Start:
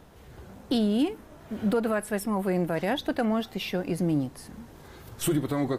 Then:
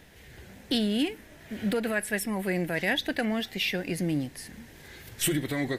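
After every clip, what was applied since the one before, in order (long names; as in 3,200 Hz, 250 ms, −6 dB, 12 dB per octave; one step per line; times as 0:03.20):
high shelf with overshoot 1,500 Hz +6.5 dB, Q 3
level −2.5 dB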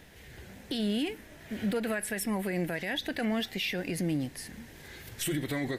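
brickwall limiter −23 dBFS, peak gain reduction 9 dB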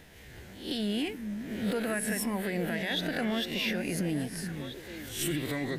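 peak hold with a rise ahead of every peak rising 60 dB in 0.45 s
echo through a band-pass that steps 433 ms, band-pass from 180 Hz, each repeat 1.4 octaves, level −4 dB
level −1.5 dB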